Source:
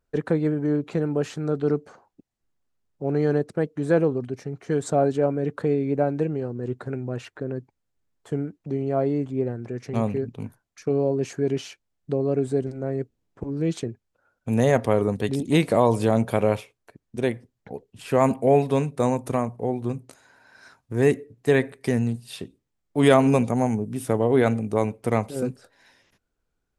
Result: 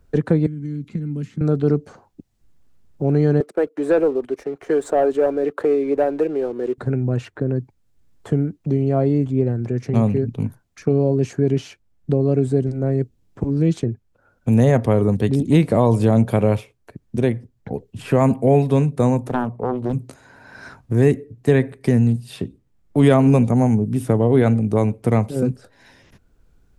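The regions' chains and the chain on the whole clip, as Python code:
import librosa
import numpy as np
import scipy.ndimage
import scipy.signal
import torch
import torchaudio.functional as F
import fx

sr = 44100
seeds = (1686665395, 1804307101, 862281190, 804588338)

y = fx.chain(x, sr, fx.tone_stack(knobs='6-0-2'),
    fx.small_body(hz=(220.0, 2100.0), ring_ms=35, db=12),
    fx.band_squash(depth_pct=100), at=(0.46, 1.41))
y = fx.chain(y, sr, fx.highpass(hz=350.0, slope=24),
    fx.peak_eq(hz=5300.0, db=-7.5, octaves=1.5),
    fx.leveller(passes=1), at=(3.4, 6.78))
y = fx.chain(y, sr, fx.highpass(hz=230.0, slope=6),
    fx.high_shelf(hz=3700.0, db=-11.0),
    fx.doppler_dist(depth_ms=0.47), at=(19.27, 19.93))
y = fx.low_shelf(y, sr, hz=270.0, db=12.0)
y = fx.band_squash(y, sr, depth_pct=40)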